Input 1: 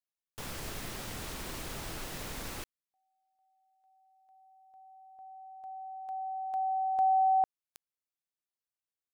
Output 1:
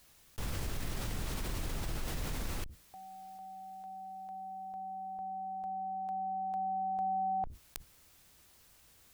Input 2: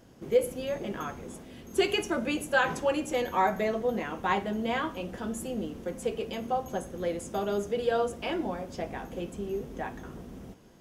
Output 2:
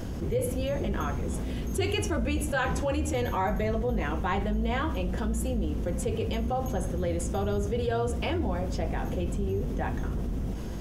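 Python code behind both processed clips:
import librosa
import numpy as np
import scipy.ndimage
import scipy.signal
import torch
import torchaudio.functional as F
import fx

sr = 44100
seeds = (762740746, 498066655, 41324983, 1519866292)

y = fx.octave_divider(x, sr, octaves=2, level_db=-2.0)
y = fx.low_shelf(y, sr, hz=170.0, db=10.0)
y = fx.env_flatten(y, sr, amount_pct=70)
y = y * librosa.db_to_amplitude(-8.5)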